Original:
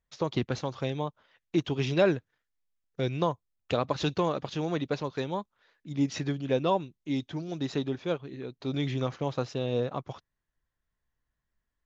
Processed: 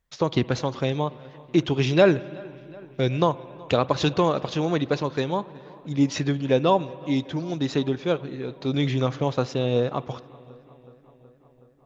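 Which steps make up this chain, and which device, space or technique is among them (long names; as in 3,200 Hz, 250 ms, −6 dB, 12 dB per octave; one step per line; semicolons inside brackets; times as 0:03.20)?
dub delay into a spring reverb (feedback echo with a low-pass in the loop 372 ms, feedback 71%, low-pass 3,700 Hz, level −23.5 dB; spring reverb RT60 2.3 s, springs 55 ms, chirp 55 ms, DRR 18.5 dB)
level +6.5 dB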